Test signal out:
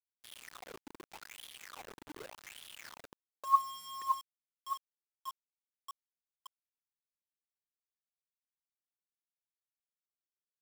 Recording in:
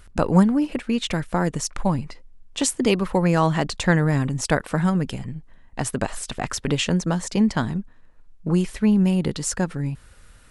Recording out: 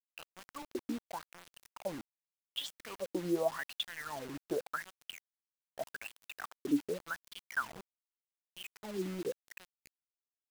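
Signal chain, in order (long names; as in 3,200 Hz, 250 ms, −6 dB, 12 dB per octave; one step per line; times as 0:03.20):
LFO wah 0.85 Hz 290–3,400 Hz, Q 15
bit-depth reduction 8 bits, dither none
level +1.5 dB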